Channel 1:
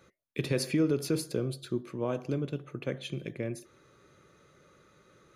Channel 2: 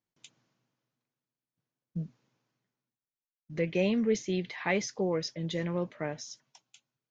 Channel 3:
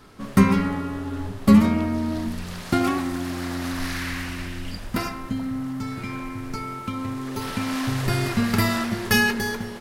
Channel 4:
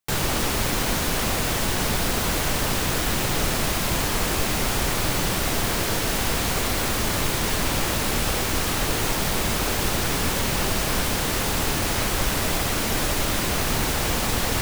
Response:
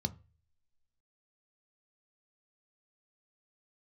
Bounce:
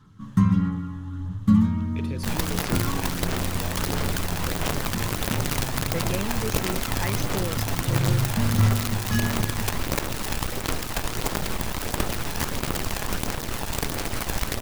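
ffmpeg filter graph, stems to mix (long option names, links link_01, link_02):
-filter_complex "[0:a]acompressor=threshold=-34dB:ratio=3,adelay=1600,volume=-2dB[link_01];[1:a]adelay=2350,volume=-4dB[link_02];[2:a]volume=-11dB,asplit=2[link_03][link_04];[link_04]volume=-4dB[link_05];[3:a]highshelf=frequency=2400:gain=-6,acrusher=bits=4:dc=4:mix=0:aa=0.000001,adelay=2150,volume=-3dB[link_06];[4:a]atrim=start_sample=2205[link_07];[link_05][link_07]afir=irnorm=-1:irlink=0[link_08];[link_01][link_02][link_03][link_06][link_08]amix=inputs=5:normalize=0,aphaser=in_gain=1:out_gain=1:delay=1.2:decay=0.27:speed=1.5:type=sinusoidal"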